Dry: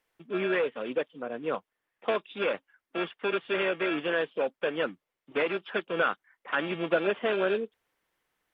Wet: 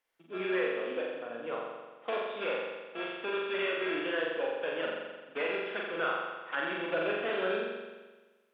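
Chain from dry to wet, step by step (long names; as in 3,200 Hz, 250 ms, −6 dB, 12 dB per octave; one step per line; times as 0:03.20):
low-shelf EQ 190 Hz −12 dB
on a send: flutter between parallel walls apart 7.4 metres, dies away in 1.3 s
on the sum: level −6.5 dB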